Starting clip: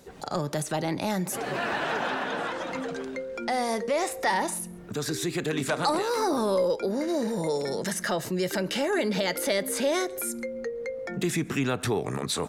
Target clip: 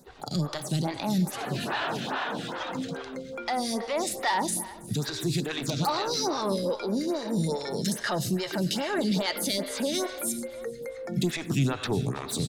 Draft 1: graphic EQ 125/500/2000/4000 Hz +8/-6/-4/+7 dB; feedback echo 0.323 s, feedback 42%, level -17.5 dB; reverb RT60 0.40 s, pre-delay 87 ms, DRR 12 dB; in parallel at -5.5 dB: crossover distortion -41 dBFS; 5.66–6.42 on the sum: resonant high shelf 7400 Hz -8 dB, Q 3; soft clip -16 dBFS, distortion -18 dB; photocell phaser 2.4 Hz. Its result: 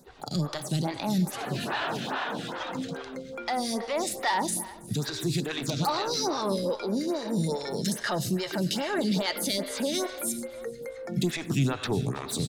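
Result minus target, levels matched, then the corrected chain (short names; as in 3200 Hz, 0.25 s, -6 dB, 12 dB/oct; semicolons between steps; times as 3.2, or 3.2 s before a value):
crossover distortion: distortion +9 dB
graphic EQ 125/500/2000/4000 Hz +8/-6/-4/+7 dB; feedback echo 0.323 s, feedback 42%, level -17.5 dB; reverb RT60 0.40 s, pre-delay 87 ms, DRR 12 dB; in parallel at -5.5 dB: crossover distortion -50 dBFS; 5.66–6.42 on the sum: resonant high shelf 7400 Hz -8 dB, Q 3; soft clip -16 dBFS, distortion -18 dB; photocell phaser 2.4 Hz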